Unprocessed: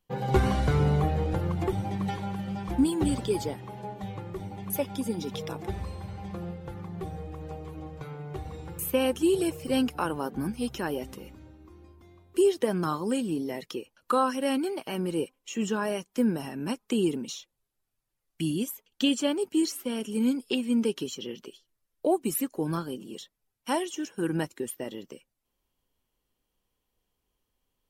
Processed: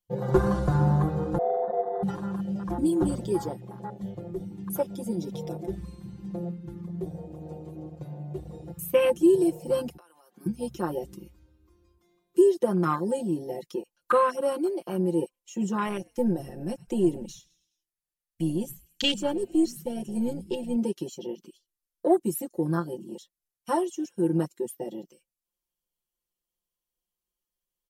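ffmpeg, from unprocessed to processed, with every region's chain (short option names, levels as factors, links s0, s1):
-filter_complex "[0:a]asettb=1/sr,asplit=3[s0][s1][s2];[s0]atrim=end=1.384[s3];[s1]atrim=start=1.38:end=2.03,asetpts=PTS-STARTPTS,afade=t=in:d=0.004:c=qsin,afade=t=out:st=0.646:d=0.004:c=qsin,lowpass=f=150:t=q:w=1.8,aeval=exprs='val(0)*sin(2*PI*590*n/s)':c=same[s4];[s2]atrim=start=2.026[s5];[s3][s4]acrossfade=d=0.004:c1=hsin:c2=qsin[s6];[s6][s5]acrossfade=d=0.004:c1=qsin:c2=hsin,asettb=1/sr,asplit=3[s7][s8][s9];[s7]atrim=end=9.974[s10];[s8]atrim=start=9.97:end=10.46,asetpts=PTS-STARTPTS,afade=t=in:d=0.004:c=qsin,afade=t=out:st=0.486:d=0.004:c=qsin,highpass=550,agate=range=0.0224:threshold=0.00355:ratio=3:release=100:detection=peak,acompressor=threshold=0.0112:ratio=12:attack=3.2:release=140:knee=1:detection=peak[s11];[s9]atrim=start=10.456[s12];[s10][s11]acrossfade=d=0.004:c1=hsin:c2=qsin[s13];[s13][s12]acrossfade=d=0.004:c1=qsin:c2=hsin,asettb=1/sr,asplit=3[s14][s15][s16];[s14]atrim=end=15.854[s17];[s15]atrim=start=15.85:end=20.76,asetpts=PTS-STARTPTS,afade=t=in:d=0.004:c=qsin,afade=t=out:st=4.906:d=0.004:c=qsin,aeval=exprs='if(lt(val(0),0),0.708*val(0),val(0))':c=same,equalizer=f=1800:t=o:w=0.23:g=6,asplit=5[s18][s19][s20][s21][s22];[s19]adelay=105,afreqshift=-82,volume=0.112[s23];[s20]adelay=210,afreqshift=-164,volume=0.0582[s24];[s21]adelay=315,afreqshift=-246,volume=0.0302[s25];[s22]adelay=420,afreqshift=-328,volume=0.0158[s26];[s18][s23][s24][s25][s26]amix=inputs=5:normalize=0,atrim=end_sample=216531[s27];[s16]atrim=start=20.756[s28];[s17][s27]acrossfade=d=0.004:c1=hsin:c2=qsin[s29];[s29][s28]acrossfade=d=0.004:c1=qsin:c2=hsin,afwtdn=0.0224,bass=f=250:g=-2,treble=f=4000:g=10,aecho=1:1:5.7:0.97"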